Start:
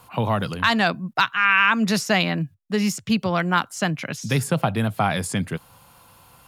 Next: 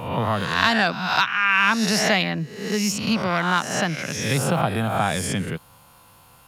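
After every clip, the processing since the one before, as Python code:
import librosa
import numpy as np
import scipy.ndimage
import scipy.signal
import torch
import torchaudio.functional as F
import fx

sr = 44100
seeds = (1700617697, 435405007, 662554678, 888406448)

y = fx.spec_swells(x, sr, rise_s=0.85)
y = fx.dynamic_eq(y, sr, hz=5600.0, q=3.9, threshold_db=-45.0, ratio=4.0, max_db=7)
y = F.gain(torch.from_numpy(y), -2.5).numpy()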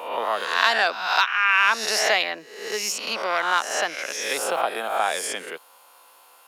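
y = scipy.signal.sosfilt(scipy.signal.butter(4, 410.0, 'highpass', fs=sr, output='sos'), x)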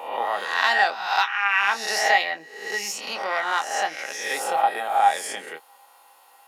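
y = fx.doubler(x, sr, ms=25.0, db=-8)
y = fx.small_body(y, sr, hz=(810.0, 1900.0), ring_ms=100, db=17)
y = F.gain(torch.from_numpy(y), -4.0).numpy()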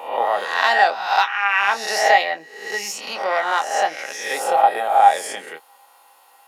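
y = fx.dynamic_eq(x, sr, hz=580.0, q=1.2, threshold_db=-35.0, ratio=4.0, max_db=7)
y = F.gain(torch.from_numpy(y), 1.5).numpy()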